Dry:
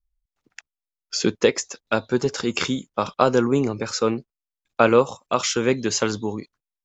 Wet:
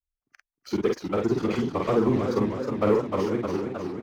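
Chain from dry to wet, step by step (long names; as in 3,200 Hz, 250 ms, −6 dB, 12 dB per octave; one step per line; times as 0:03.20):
fade-out on the ending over 2.15 s
low-pass filter 1,200 Hz 6 dB per octave
leveller curve on the samples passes 2
phase-vocoder stretch with locked phases 0.54×
double-tracking delay 44 ms −3 dB
wrong playback speed 48 kHz file played as 44.1 kHz
feedback echo with a swinging delay time 312 ms, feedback 67%, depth 159 cents, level −6.5 dB
level −9 dB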